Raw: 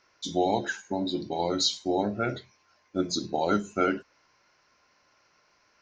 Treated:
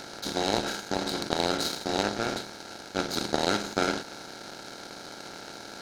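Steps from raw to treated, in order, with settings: per-bin compression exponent 0.2; power-law curve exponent 2

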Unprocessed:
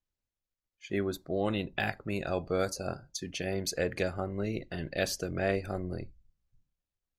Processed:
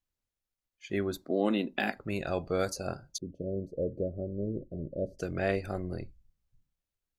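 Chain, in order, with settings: 1.23–1.97 resonant low shelf 160 Hz -13.5 dB, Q 3; 3.18–5.19 elliptic low-pass 590 Hz, stop band 40 dB

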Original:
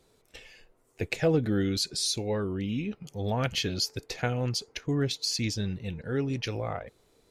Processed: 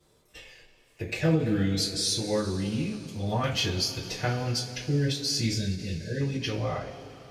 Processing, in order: spectral delete 4.53–6.21, 680–1500 Hz; two-slope reverb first 0.25 s, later 3.9 s, from -21 dB, DRR -9.5 dB; ending taper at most 130 dB/s; gain -8 dB

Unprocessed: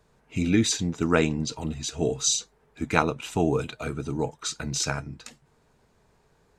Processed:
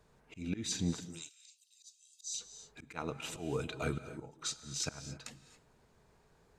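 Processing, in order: 1–2.34 inverse Chebyshev high-pass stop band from 790 Hz, stop band 80 dB; auto swell 0.407 s; non-linear reverb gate 0.3 s rising, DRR 12 dB; gain -3.5 dB

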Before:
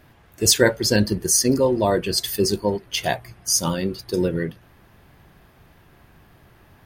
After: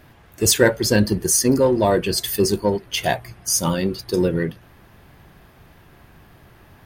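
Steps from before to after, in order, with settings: dynamic EQ 4900 Hz, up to -5 dB, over -31 dBFS, Q 1.4; in parallel at -6.5 dB: soft clip -18.5 dBFS, distortion -9 dB

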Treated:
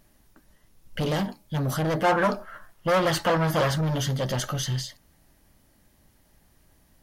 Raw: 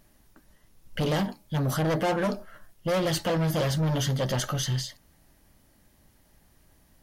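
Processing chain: 2.04–3.81 bell 1200 Hz +10 dB 1.7 oct

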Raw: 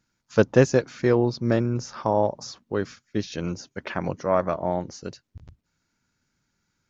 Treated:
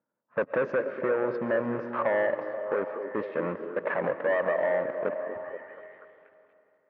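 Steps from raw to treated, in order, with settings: low-pass opened by the level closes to 910 Hz, open at -19 dBFS; bell 590 Hz +15 dB 0.79 oct; sample leveller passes 2; limiter -8.5 dBFS, peak gain reduction 10.5 dB; compressor, threshold -16 dBFS, peak gain reduction 5.5 dB; soft clip -16.5 dBFS, distortion -15 dB; speaker cabinet 250–2300 Hz, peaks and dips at 350 Hz -4 dB, 700 Hz -5 dB, 1100 Hz +6 dB, 1800 Hz +5 dB; on a send: delay with a stepping band-pass 0.24 s, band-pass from 320 Hz, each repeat 0.7 oct, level -5 dB; on the sum: digital reverb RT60 2.9 s, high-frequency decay 0.85×, pre-delay 85 ms, DRR 11.5 dB; gain -2.5 dB

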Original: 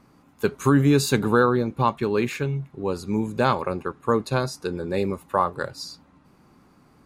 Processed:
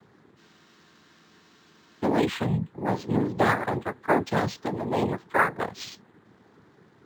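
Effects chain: noise vocoder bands 6; spectral freeze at 0.39, 1.65 s; decimation joined by straight lines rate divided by 4×

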